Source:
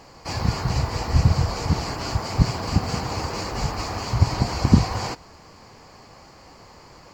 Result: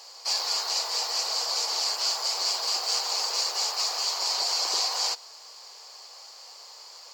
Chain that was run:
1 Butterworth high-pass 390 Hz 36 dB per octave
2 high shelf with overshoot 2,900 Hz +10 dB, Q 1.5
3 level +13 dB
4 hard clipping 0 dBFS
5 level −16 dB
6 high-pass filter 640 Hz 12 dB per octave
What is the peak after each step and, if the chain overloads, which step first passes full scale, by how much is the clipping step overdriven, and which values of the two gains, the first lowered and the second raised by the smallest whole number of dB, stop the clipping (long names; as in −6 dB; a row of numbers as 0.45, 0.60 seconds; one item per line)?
−15.0, −9.0, +4.0, 0.0, −16.0, −14.5 dBFS
step 3, 4.0 dB
step 3 +9 dB, step 5 −12 dB